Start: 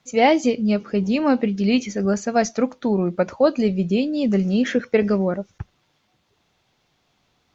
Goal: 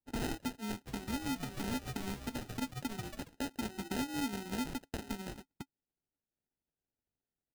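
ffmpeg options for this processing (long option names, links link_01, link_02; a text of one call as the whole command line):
ffmpeg -i in.wav -filter_complex "[0:a]acompressor=threshold=-28dB:ratio=4,aeval=exprs='0.158*(cos(1*acos(clip(val(0)/0.158,-1,1)))-cos(1*PI/2))+0.00178*(cos(3*acos(clip(val(0)/0.158,-1,1)))-cos(3*PI/2))+0.0224*(cos(6*acos(clip(val(0)/0.158,-1,1)))-cos(6*PI/2))+0.0224*(cos(7*acos(clip(val(0)/0.158,-1,1)))-cos(7*PI/2))+0.0447*(cos(8*acos(clip(val(0)/0.158,-1,1)))-cos(8*PI/2))':channel_layout=same,asplit=3[link_01][link_02][link_03];[link_01]bandpass=frequency=270:width_type=q:width=8,volume=0dB[link_04];[link_02]bandpass=frequency=2290:width_type=q:width=8,volume=-6dB[link_05];[link_03]bandpass=frequency=3010:width_type=q:width=8,volume=-9dB[link_06];[link_04][link_05][link_06]amix=inputs=3:normalize=0,equalizer=frequency=3700:width_type=o:width=1.2:gain=12.5,acrusher=samples=39:mix=1:aa=0.000001,asplit=3[link_07][link_08][link_09];[link_07]afade=type=out:start_time=0.86:duration=0.02[link_10];[link_08]asplit=6[link_11][link_12][link_13][link_14][link_15][link_16];[link_12]adelay=139,afreqshift=-130,volume=-10dB[link_17];[link_13]adelay=278,afreqshift=-260,volume=-16dB[link_18];[link_14]adelay=417,afreqshift=-390,volume=-22dB[link_19];[link_15]adelay=556,afreqshift=-520,volume=-28.1dB[link_20];[link_16]adelay=695,afreqshift=-650,volume=-34.1dB[link_21];[link_11][link_17][link_18][link_19][link_20][link_21]amix=inputs=6:normalize=0,afade=type=in:start_time=0.86:duration=0.02,afade=type=out:start_time=3.27:duration=0.02[link_22];[link_09]afade=type=in:start_time=3.27:duration=0.02[link_23];[link_10][link_22][link_23]amix=inputs=3:normalize=0,alimiter=level_in=10dB:limit=-24dB:level=0:latency=1:release=250,volume=-10dB,adynamicequalizer=threshold=0.00112:dfrequency=2000:dqfactor=0.7:tfrequency=2000:tqfactor=0.7:attack=5:release=100:ratio=0.375:range=2:mode=boostabove:tftype=highshelf,volume=5dB" out.wav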